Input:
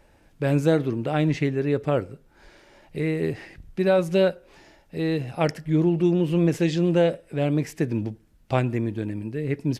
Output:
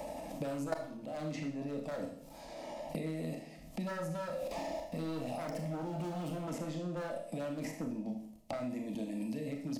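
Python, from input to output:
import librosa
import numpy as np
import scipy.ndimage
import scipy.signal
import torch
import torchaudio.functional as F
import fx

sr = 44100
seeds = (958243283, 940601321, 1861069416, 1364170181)

y = fx.highpass(x, sr, hz=200.0, slope=6)
y = 10.0 ** (-11.0 / 20.0) * np.tanh(y / 10.0 ** (-11.0 / 20.0))
y = fx.power_curve(y, sr, exponent=0.7, at=(4.29, 6.38))
y = fx.high_shelf(y, sr, hz=4600.0, db=-4.5)
y = fx.fixed_phaser(y, sr, hz=390.0, stages=6)
y = 10.0 ** (-23.0 / 20.0) * (np.abs((y / 10.0 ** (-23.0 / 20.0) + 3.0) % 4.0 - 2.0) - 1.0)
y = fx.small_body(y, sr, hz=(640.0, 1300.0), ring_ms=45, db=9)
y = fx.level_steps(y, sr, step_db=23)
y = fx.peak_eq(y, sr, hz=3100.0, db=-6.0, octaves=1.5)
y = fx.rev_schroeder(y, sr, rt60_s=0.47, comb_ms=25, drr_db=2.5)
y = fx.band_squash(y, sr, depth_pct=100)
y = y * librosa.db_to_amplitude(5.5)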